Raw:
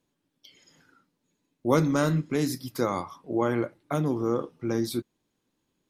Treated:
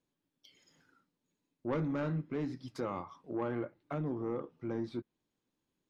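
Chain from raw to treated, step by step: median filter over 3 samples; treble ducked by the level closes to 2200 Hz, closed at -25 dBFS; soft clip -19 dBFS, distortion -14 dB; gain -8 dB

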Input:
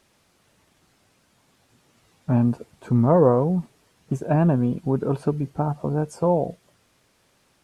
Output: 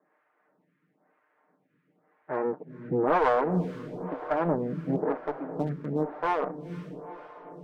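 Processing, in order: minimum comb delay 6.6 ms; elliptic band-pass 180–1900 Hz, stop band 50 dB; one-sided clip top -18 dBFS; diffused feedback echo 0.467 s, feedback 54%, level -11 dB; photocell phaser 1 Hz

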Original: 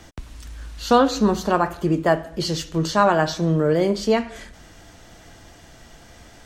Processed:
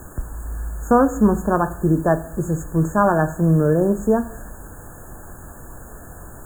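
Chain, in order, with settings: low shelf 200 Hz +10 dB; added noise pink -39 dBFS; brick-wall FIR band-stop 1800–6500 Hz; gain -1 dB

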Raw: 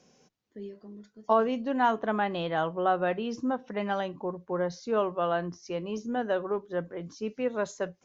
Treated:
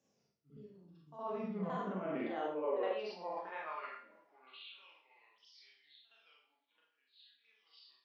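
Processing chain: repeated pitch sweeps -8.5 st, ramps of 0.616 s; Doppler pass-by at 3.1, 28 m/s, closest 3.1 m; de-hum 56.31 Hz, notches 29; on a send: reverse echo 66 ms -12.5 dB; on the sum: reverb RT60 0.55 s, pre-delay 27 ms, DRR -2 dB; reverse; compressor 8:1, threshold -47 dBFS, peak gain reduction 18 dB; reverse; high-pass sweep 93 Hz -> 3500 Hz, 1.04–4.98; gain +10 dB

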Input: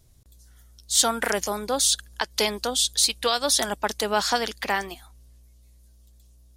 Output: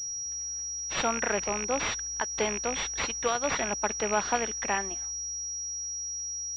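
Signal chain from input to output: rattling part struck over -35 dBFS, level -16 dBFS; pulse-width modulation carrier 5700 Hz; gain -3.5 dB

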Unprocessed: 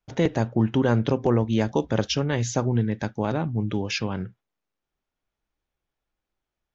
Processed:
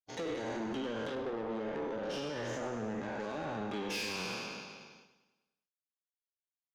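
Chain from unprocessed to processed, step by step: spectral trails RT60 1.66 s; HPF 300 Hz 12 dB/oct; gate with hold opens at -44 dBFS; 1.15–3.2 LPF 1100 Hz 6 dB/oct; harmonic-percussive split percussive -11 dB; compressor 6:1, threshold -29 dBFS, peak gain reduction 11 dB; soft clip -33.5 dBFS, distortion -9 dB; feedback echo 0.101 s, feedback 59%, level -13 dB; Opus 48 kbps 48000 Hz

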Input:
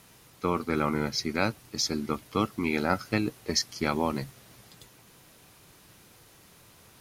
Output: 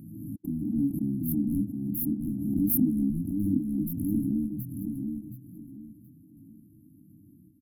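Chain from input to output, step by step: Wiener smoothing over 15 samples; HPF 170 Hz 6 dB/oct; bell 9000 Hz -15 dB 0.29 oct; in parallel at -2.5 dB: compressor, threshold -35 dBFS, peak gain reduction 14 dB; on the sum: step gate "xxx.xxxx.xxxxxxx" 146 bpm -60 dB; chorus 0.33 Hz, delay 17 ms, depth 5.5 ms; varispeed -8%; overdrive pedal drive 21 dB, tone 5000 Hz, clips at -11 dBFS; brick-wall FIR band-stop 320–10000 Hz; feedback echo 0.723 s, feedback 26%, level -5.5 dB; backwards sustainer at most 34 dB/s; gain +3 dB

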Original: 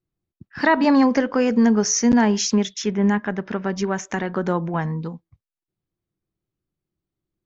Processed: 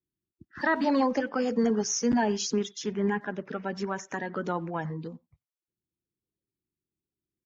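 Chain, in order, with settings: bin magnitudes rounded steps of 30 dB; HPF 44 Hz; speakerphone echo 90 ms, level -24 dB; gain -8 dB

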